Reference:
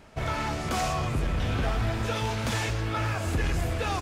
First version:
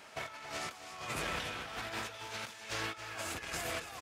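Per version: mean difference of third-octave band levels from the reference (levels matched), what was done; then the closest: 8.0 dB: HPF 1300 Hz 6 dB/oct; negative-ratio compressor -41 dBFS, ratio -0.5; echo 0.275 s -11.5 dB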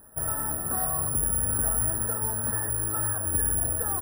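15.0 dB: FFT band-reject 1900–11000 Hz; careless resampling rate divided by 4×, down filtered, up zero stuff; gain -5.5 dB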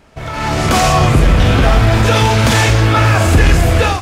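2.0 dB: limiter -22.5 dBFS, peak gain reduction 4 dB; AGC gain up to 15 dB; on a send: flutter echo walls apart 8 m, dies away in 0.27 s; on the sum: gain +4 dB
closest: third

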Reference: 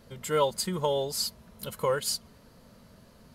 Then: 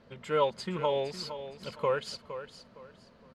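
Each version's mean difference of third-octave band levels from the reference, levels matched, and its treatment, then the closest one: 6.0 dB: rattling part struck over -40 dBFS, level -36 dBFS; LPF 3200 Hz 12 dB/oct; low shelf 110 Hz -10 dB; feedback echo 0.463 s, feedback 27%, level -11.5 dB; gain -1 dB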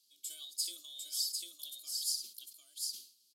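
17.5 dB: inverse Chebyshev high-pass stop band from 1800 Hz, stop band 40 dB; frequency shift +160 Hz; tapped delay 61/749 ms -19/-3.5 dB; sustainer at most 120 dB/s; gain -4 dB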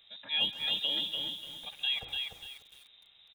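11.5 dB: notches 50/100/150 Hz; on a send: feedback echo 0.142 s, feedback 57%, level -17 dB; on the sum: inverted band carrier 3800 Hz; lo-fi delay 0.295 s, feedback 35%, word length 8-bit, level -3.5 dB; gain -5.5 dB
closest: first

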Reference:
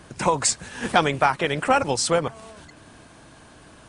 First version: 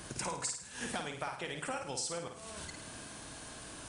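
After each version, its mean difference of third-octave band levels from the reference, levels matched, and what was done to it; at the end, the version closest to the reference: 10.0 dB: high shelf 4100 Hz +12 dB; compressor 6:1, threshold -35 dBFS, peak gain reduction 24.5 dB; flutter echo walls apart 9.1 m, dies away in 0.53 s; gain -3 dB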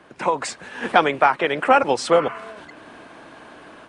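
5.0 dB: spectral repair 2.17–2.52, 880–3000 Hz both; three-band isolator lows -17 dB, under 230 Hz, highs -15 dB, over 3400 Hz; AGC gain up to 8 dB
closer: second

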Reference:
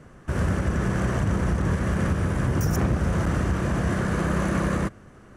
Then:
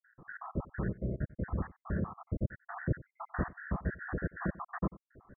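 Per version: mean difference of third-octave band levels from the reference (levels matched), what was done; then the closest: 18.0 dB: random spectral dropouts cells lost 77%; Chebyshev low-pass 1900 Hz, order 8; echo 93 ms -20 dB; vocal rider within 3 dB 0.5 s; gain -6 dB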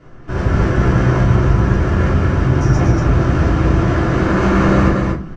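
5.5 dB: LPF 5700 Hz 24 dB/oct; echo 0.236 s -3 dB; shoebox room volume 160 m³, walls furnished, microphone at 3.2 m; AGC; gain -1 dB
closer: second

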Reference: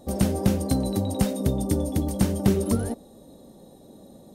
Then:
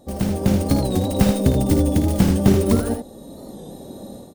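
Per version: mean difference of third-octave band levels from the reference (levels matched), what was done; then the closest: 4.0 dB: tracing distortion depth 0.12 ms; AGC gain up to 12 dB; on a send: early reflections 55 ms -9 dB, 79 ms -6.5 dB; on the sum: record warp 45 rpm, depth 100 cents; gain -1 dB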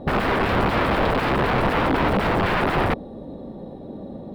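10.0 dB: high shelf 6300 Hz -5.5 dB; in parallel at +2 dB: limiter -15.5 dBFS, peak gain reduction 8 dB; on the sum: wrapped overs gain 19 dB; air absorption 440 m; gain +6.5 dB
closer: first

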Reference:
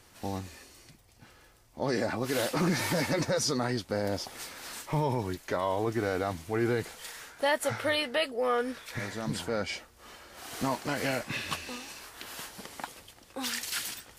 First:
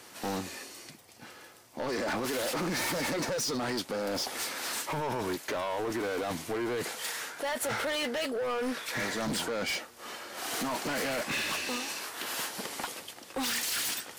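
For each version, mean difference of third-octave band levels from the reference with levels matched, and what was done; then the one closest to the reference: 6.0 dB: HPF 210 Hz 12 dB/oct; in parallel at +3 dB: negative-ratio compressor -34 dBFS, ratio -0.5; on the sum: hard clip -27 dBFS, distortion -8 dB; gain -2 dB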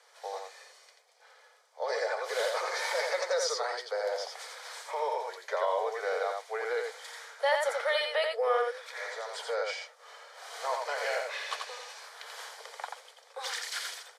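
10.5 dB: steep high-pass 440 Hz 96 dB/oct; air absorption 59 m; notch 2700 Hz, Q 5.9; echo 86 ms -4 dB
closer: first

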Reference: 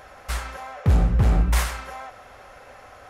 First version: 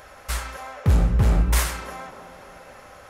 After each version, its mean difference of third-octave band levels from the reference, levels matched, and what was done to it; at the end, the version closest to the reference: 2.5 dB: high shelf 5800 Hz +6.5 dB; notch 740 Hz, Q 14; band-limited delay 0.299 s, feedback 59%, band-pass 490 Hz, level -10.5 dB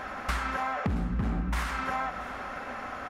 7.5 dB: EQ curve 130 Hz 0 dB, 230 Hz +14 dB, 490 Hz 0 dB, 1300 Hz +8 dB, 11000 Hz -6 dB; compressor 12:1, threshold -29 dBFS, peak gain reduction 18 dB; overloaded stage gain 23.5 dB; on a send: echo 0.676 s -19 dB; on the sum: gain +3 dB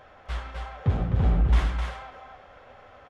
5.0 dB: bell 3300 Hz +7 dB 0.38 oct; flange 1.1 Hz, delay 7.5 ms, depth 7.8 ms, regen -38%; tape spacing loss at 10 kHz 22 dB; on a send: echo 0.258 s -4.5 dB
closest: first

